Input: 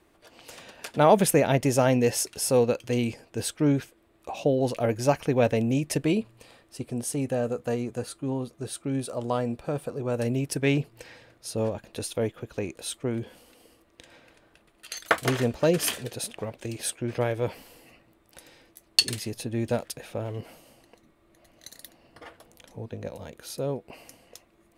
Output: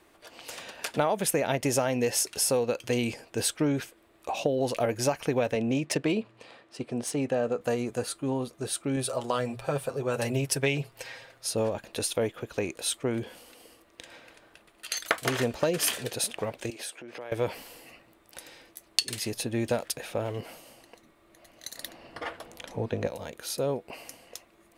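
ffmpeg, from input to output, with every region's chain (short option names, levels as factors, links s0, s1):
-filter_complex "[0:a]asettb=1/sr,asplit=3[s0][s1][s2];[s0]atrim=end=5.554[s3];[s1]atrim=start=5.55:end=7.61,asetpts=PTS-STARTPTS,afade=t=in:d=0.004:c=qsin,afade=t=out:st=2.056:d=0.004:c=qsin,highpass=120,adynamicsmooth=sensitivity=3.5:basefreq=4800[s4];[s2]atrim=start=7.606[s5];[s3][s4]acrossfade=d=0.004:c1=hsin:c2=qsin[s6];[s6][s5]acrossfade=d=0.004:c1=qsin:c2=hsin,asettb=1/sr,asplit=3[s7][s8][s9];[s7]atrim=end=8.964[s10];[s8]atrim=start=8.96:end=11.49,asetpts=PTS-STARTPTS,afade=t=in:d=0.004:c=qsin,afade=t=out:st=2.526:d=0.004:c=qsin,equalizer=f=260:w=1.5:g=-7,bandreject=f=60:t=h:w=6,bandreject=f=120:t=h:w=6,bandreject=f=180:t=h:w=6,aecho=1:1:7.5:0.61,atrim=end_sample=111573[s11];[s9]atrim=start=11.486[s12];[s10][s11]acrossfade=d=0.004:c1=hsin:c2=qsin[s13];[s13][s12]acrossfade=d=0.004:c1=qsin:c2=hsin,asettb=1/sr,asplit=3[s14][s15][s16];[s14]atrim=end=16.704[s17];[s15]atrim=start=16.7:end=17.32,asetpts=PTS-STARTPTS,afade=t=in:d=0.004:c=qsin,afade=t=out:st=0.616:d=0.004:c=qsin,highshelf=f=6100:g=-5.5,acompressor=threshold=0.0112:ratio=6:attack=3.2:release=140:knee=1:detection=peak,highpass=260[s18];[s16]atrim=start=17.316[s19];[s17][s18]acrossfade=d=0.004:c1=hsin:c2=qsin[s20];[s20][s19]acrossfade=d=0.004:c1=qsin:c2=hsin,asettb=1/sr,asplit=3[s21][s22][s23];[s21]atrim=end=21.774[s24];[s22]atrim=start=21.77:end=23.07,asetpts=PTS-STARTPTS,afade=t=in:d=0.004:c=qsin,afade=t=out:st=1.296:d=0.004:c=qsin,highshelf=f=6400:g=-9.5,acontrast=63[s25];[s23]atrim=start=23.066[s26];[s24][s25]acrossfade=d=0.004:c1=hsin:c2=qsin[s27];[s27][s26]acrossfade=d=0.004:c1=qsin:c2=hsin,lowshelf=f=330:g=-8,acompressor=threshold=0.0447:ratio=12,volume=1.78"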